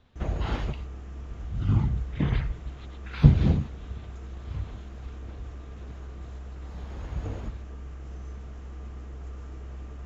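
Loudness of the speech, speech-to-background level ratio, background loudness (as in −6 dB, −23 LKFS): −27.5 LKFS, 14.5 dB, −42.0 LKFS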